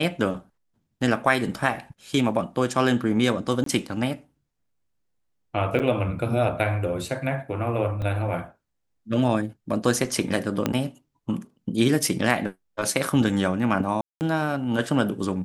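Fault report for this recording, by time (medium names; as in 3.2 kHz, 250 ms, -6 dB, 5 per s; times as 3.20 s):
3.64–3.66 s: dropout 23 ms
5.79–5.80 s: dropout 8 ms
8.02 s: dropout 2.6 ms
10.66 s: pop -8 dBFS
14.01–14.21 s: dropout 199 ms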